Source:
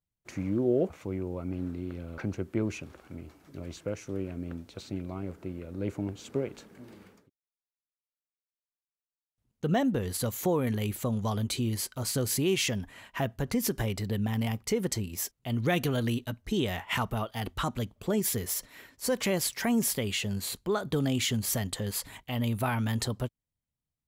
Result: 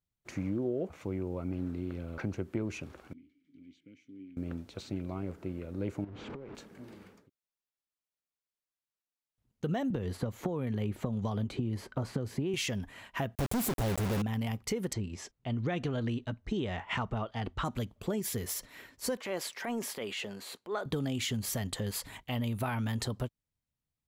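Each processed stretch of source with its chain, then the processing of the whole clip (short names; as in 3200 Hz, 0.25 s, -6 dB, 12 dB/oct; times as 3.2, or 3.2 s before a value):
3.13–4.37 vowel filter i + bell 790 Hz -13 dB 2.7 oct
6.04–6.55 zero-crossing step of -35.5 dBFS + LPF 2000 Hz + compressor 16:1, threshold -40 dBFS
9.9–12.54 LPF 1000 Hz 6 dB/oct + three-band squash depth 100%
13.35–14.22 Chebyshev band-stop 770–7300 Hz, order 4 + companded quantiser 2-bit
14.93–17.65 LPF 8000 Hz 24 dB/oct + high shelf 3500 Hz -9 dB
19.17–20.86 HPF 390 Hz + high shelf 3800 Hz -10 dB + transient shaper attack -8 dB, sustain +3 dB
whole clip: compressor, threshold -29 dBFS; high shelf 7000 Hz -4.5 dB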